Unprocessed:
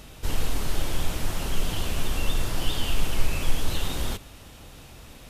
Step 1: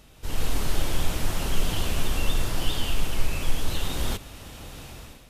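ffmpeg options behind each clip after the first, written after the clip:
-af "dynaudnorm=f=140:g=5:m=4.47,volume=0.398"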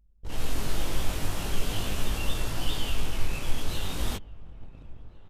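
-filter_complex "[0:a]flanger=delay=18.5:depth=2.3:speed=0.4,anlmdn=0.398,asplit=2[s0][s1];[s1]adelay=1399,volume=0.112,highshelf=f=4000:g=-31.5[s2];[s0][s2]amix=inputs=2:normalize=0"

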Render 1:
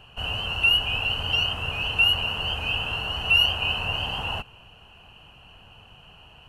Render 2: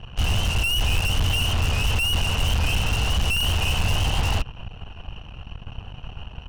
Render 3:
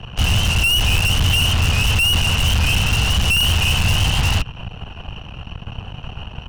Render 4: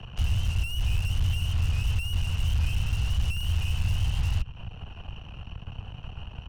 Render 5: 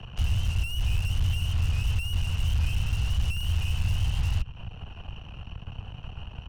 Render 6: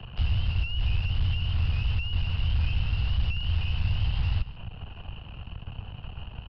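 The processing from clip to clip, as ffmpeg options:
-af "asoftclip=type=tanh:threshold=0.0596,aemphasis=mode=reproduction:type=bsi,aeval=exprs='0.075*(cos(1*acos(clip(val(0)/0.075,-1,1)))-cos(1*PI/2))+0.0133*(cos(6*acos(clip(val(0)/0.075,-1,1)))-cos(6*PI/2))':c=same,volume=1.78"
-filter_complex "[0:a]lowshelf=f=95:g=-12,acrossover=split=200|1200[s0][s1][s2];[s0]acontrast=28[s3];[s1]alimiter=level_in=2.66:limit=0.0631:level=0:latency=1:release=268,volume=0.376[s4];[s3][s4][s2]amix=inputs=3:normalize=0,volume=2.37"
-filter_complex "[0:a]acrossover=split=120[s0][s1];[s1]acompressor=threshold=0.00708:ratio=2[s2];[s0][s2]amix=inputs=2:normalize=0,volume=0.501"
-af anull
-af "aecho=1:1:147:0.141,aresample=11025,aresample=44100"

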